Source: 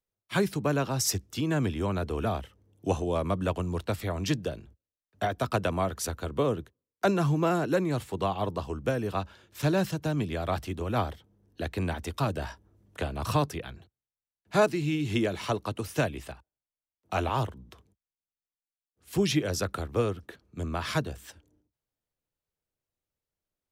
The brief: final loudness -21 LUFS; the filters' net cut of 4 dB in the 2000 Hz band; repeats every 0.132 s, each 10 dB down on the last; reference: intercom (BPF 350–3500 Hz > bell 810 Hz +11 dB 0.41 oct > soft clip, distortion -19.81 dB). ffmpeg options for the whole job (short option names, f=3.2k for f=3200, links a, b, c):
-af "highpass=350,lowpass=3.5k,equalizer=f=810:t=o:w=0.41:g=11,equalizer=f=2k:t=o:g=-6,aecho=1:1:132|264|396|528:0.316|0.101|0.0324|0.0104,asoftclip=threshold=-14dB,volume=10dB"